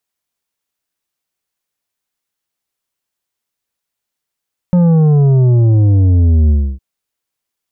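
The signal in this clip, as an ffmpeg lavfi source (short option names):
-f lavfi -i "aevalsrc='0.422*clip((2.06-t)/0.29,0,1)*tanh(2.51*sin(2*PI*180*2.06/log(65/180)*(exp(log(65/180)*t/2.06)-1)))/tanh(2.51)':d=2.06:s=44100"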